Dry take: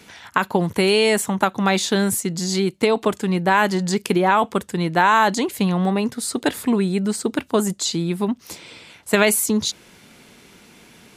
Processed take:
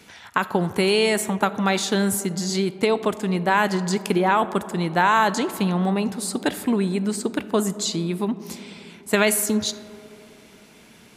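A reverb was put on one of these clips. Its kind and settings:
comb and all-pass reverb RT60 3.1 s, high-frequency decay 0.25×, pre-delay 5 ms, DRR 14 dB
level −2.5 dB

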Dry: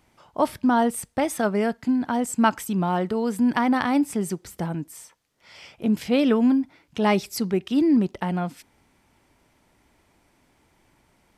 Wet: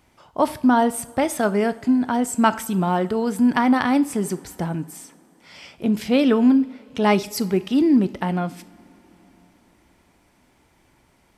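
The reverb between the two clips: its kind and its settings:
coupled-rooms reverb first 0.48 s, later 4.4 s, from −20 dB, DRR 13 dB
level +2.5 dB

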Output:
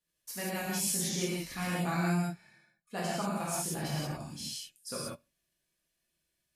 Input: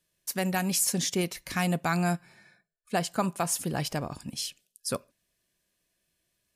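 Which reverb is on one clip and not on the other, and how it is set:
reverb whose tail is shaped and stops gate 210 ms flat, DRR −8 dB
level −13 dB

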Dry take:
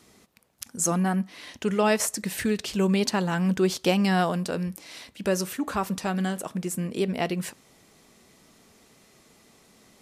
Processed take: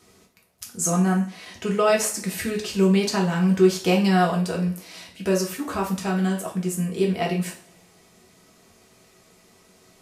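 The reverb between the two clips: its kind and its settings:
coupled-rooms reverb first 0.37 s, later 1.8 s, from −25 dB, DRR −2 dB
level −2 dB

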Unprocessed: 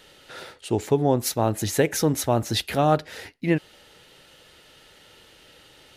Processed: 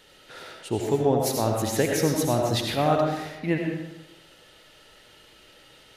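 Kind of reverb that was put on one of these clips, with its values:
comb and all-pass reverb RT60 0.97 s, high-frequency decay 0.7×, pre-delay 45 ms, DRR 0.5 dB
level −3.5 dB

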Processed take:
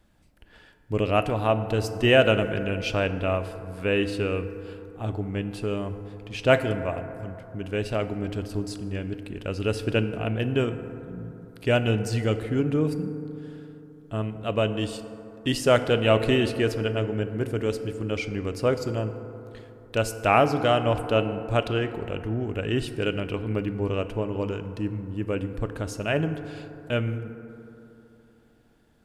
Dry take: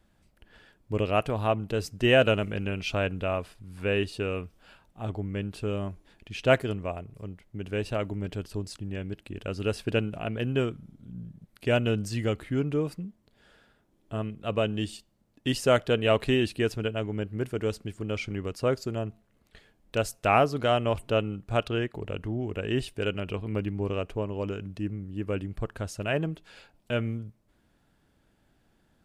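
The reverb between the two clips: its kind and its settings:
feedback delay network reverb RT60 3.2 s, high-frequency decay 0.3×, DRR 9 dB
level +2.5 dB

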